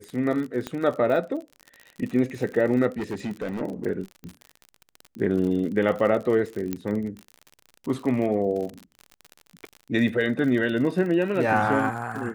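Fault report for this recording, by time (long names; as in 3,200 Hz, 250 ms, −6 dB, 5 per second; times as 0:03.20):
surface crackle 53 per second −31 dBFS
0:00.67: click −16 dBFS
0:02.98–0:03.62: clipping −25.5 dBFS
0:06.73: click −14 dBFS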